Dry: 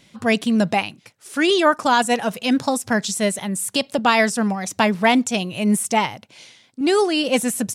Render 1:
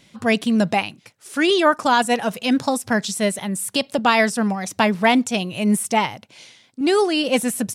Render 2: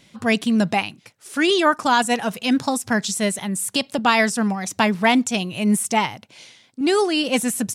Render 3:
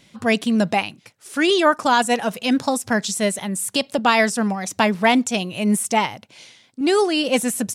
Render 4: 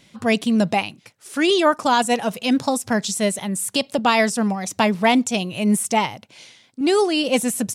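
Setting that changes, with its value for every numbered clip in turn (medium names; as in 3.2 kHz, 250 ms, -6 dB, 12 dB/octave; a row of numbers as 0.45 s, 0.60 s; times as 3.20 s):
dynamic bell, frequency: 7 kHz, 550 Hz, 130 Hz, 1.6 kHz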